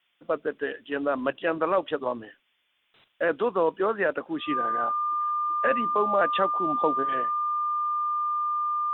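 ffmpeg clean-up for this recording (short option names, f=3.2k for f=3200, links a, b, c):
-af "bandreject=f=1.2k:w=30,afftdn=nr=6:nf=-68"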